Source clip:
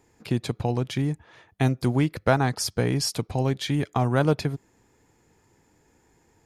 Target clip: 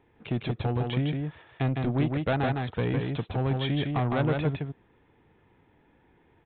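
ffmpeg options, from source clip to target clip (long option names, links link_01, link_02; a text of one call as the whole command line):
ffmpeg -i in.wav -af "aresample=8000,asoftclip=type=tanh:threshold=-20dB,aresample=44100,aecho=1:1:158:0.668,volume=-1dB" out.wav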